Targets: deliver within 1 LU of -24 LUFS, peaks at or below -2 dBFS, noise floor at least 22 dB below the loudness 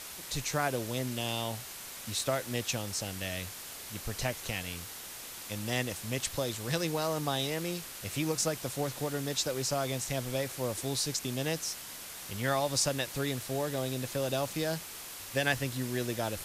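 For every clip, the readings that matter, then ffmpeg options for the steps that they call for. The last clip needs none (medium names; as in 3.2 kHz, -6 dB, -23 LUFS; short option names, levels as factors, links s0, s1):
noise floor -44 dBFS; noise floor target -56 dBFS; loudness -33.5 LUFS; peak level -14.0 dBFS; loudness target -24.0 LUFS
-> -af "afftdn=nr=12:nf=-44"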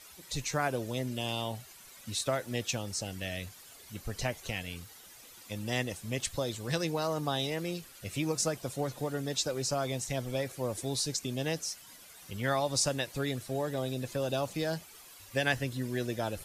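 noise floor -53 dBFS; noise floor target -56 dBFS
-> -af "afftdn=nr=6:nf=-53"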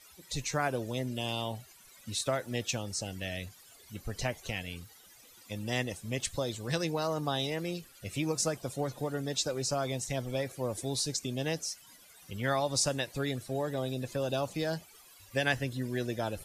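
noise floor -57 dBFS; loudness -34.0 LUFS; peak level -14.5 dBFS; loudness target -24.0 LUFS
-> -af "volume=3.16"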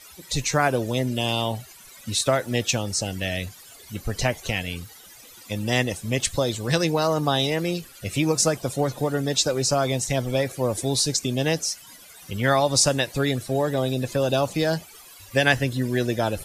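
loudness -24.0 LUFS; peak level -4.5 dBFS; noise floor -47 dBFS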